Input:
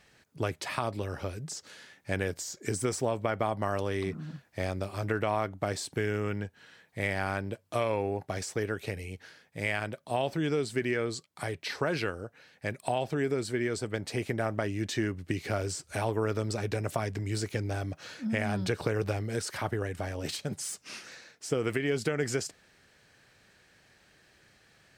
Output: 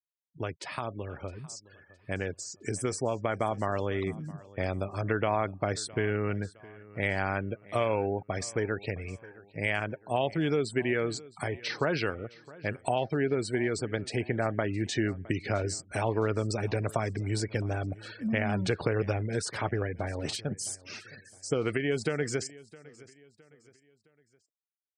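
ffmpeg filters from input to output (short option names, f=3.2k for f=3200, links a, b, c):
-af "afftfilt=real='re*gte(hypot(re,im),0.00794)':imag='im*gte(hypot(re,im),0.00794)':win_size=1024:overlap=0.75,dynaudnorm=f=290:g=21:m=5dB,aecho=1:1:663|1326|1989:0.0891|0.0357|0.0143,volume=-3.5dB"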